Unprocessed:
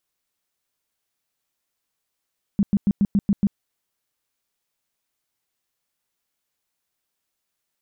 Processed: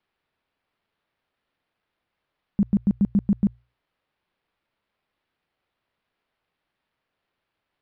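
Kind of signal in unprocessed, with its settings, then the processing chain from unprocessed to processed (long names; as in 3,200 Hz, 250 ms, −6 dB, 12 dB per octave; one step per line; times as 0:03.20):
tone bursts 201 Hz, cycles 8, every 0.14 s, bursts 7, −14 dBFS
mains-hum notches 60/120 Hz
linearly interpolated sample-rate reduction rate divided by 6×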